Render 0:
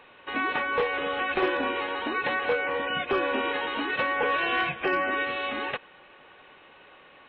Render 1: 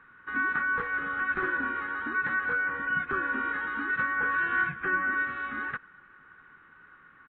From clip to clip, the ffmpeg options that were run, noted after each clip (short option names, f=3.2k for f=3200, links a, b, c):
-af "firequalizer=gain_entry='entry(180,0);entry(610,-22);entry(1400,7);entry(2600,-19)':delay=0.05:min_phase=1"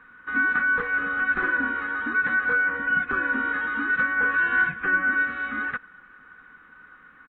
-af "aecho=1:1:4:0.44,volume=3.5dB"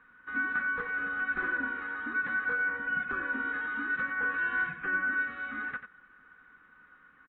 -af "aecho=1:1:90:0.316,volume=-8.5dB"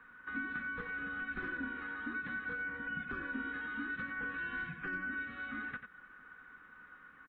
-filter_complex "[0:a]acrossover=split=300|3000[a][b][c];[b]acompressor=threshold=-45dB:ratio=4[d];[a][d][c]amix=inputs=3:normalize=0,volume=2dB"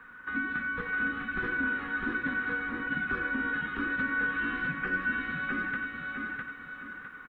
-af "aecho=1:1:655|1310|1965|2620|3275:0.708|0.269|0.102|0.0388|0.0148,volume=7dB"